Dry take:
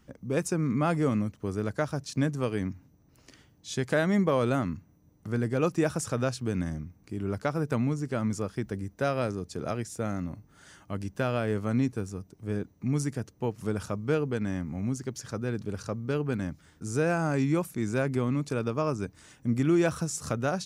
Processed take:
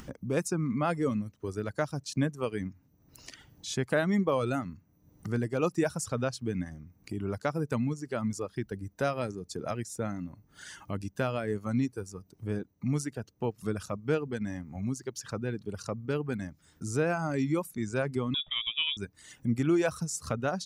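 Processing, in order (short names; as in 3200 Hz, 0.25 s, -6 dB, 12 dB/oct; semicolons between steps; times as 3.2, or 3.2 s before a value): reverb removal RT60 1.8 s; in parallel at +3 dB: upward compressor, threshold -29 dBFS; 18.34–18.97 on the sum: inverted band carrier 3600 Hz; gain -8.5 dB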